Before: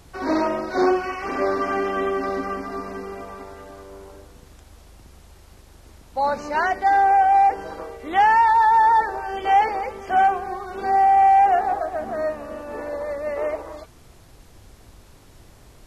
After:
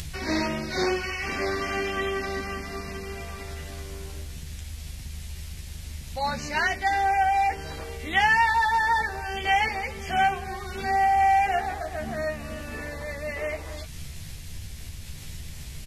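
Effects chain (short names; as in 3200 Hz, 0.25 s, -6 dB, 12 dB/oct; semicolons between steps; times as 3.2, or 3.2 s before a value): band shelf 610 Hz -14.5 dB 2.8 oct; upward compressor, threshold -36 dBFS; doubler 13 ms -5 dB; gain +5.5 dB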